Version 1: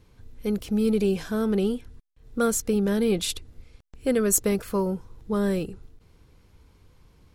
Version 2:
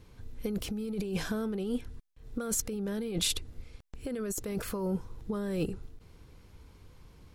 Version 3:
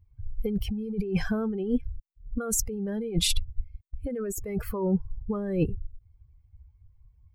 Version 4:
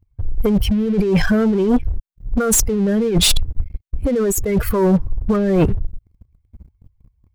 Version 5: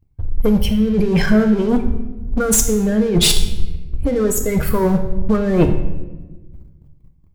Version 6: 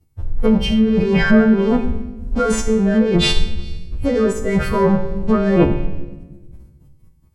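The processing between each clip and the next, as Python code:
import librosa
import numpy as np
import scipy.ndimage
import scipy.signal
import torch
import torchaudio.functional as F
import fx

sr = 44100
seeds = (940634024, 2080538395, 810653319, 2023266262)

y1 = fx.over_compress(x, sr, threshold_db=-29.0, ratio=-1.0)
y1 = y1 * 10.0 ** (-3.5 / 20.0)
y2 = fx.bin_expand(y1, sr, power=2.0)
y2 = fx.low_shelf(y2, sr, hz=140.0, db=10.5)
y2 = y2 * 10.0 ** (6.5 / 20.0)
y3 = fx.leveller(y2, sr, passes=3)
y3 = y3 * 10.0 ** (3.5 / 20.0)
y4 = fx.comb_fb(y3, sr, f0_hz=71.0, decay_s=0.57, harmonics='all', damping=0.0, mix_pct=70)
y4 = fx.room_shoebox(y4, sr, seeds[0], volume_m3=780.0, walls='mixed', distance_m=0.59)
y4 = y4 * 10.0 ** (7.5 / 20.0)
y5 = fx.freq_snap(y4, sr, grid_st=2)
y5 = fx.env_lowpass_down(y5, sr, base_hz=2100.0, full_db=-11.5)
y5 = y5 * 10.0 ** (2.0 / 20.0)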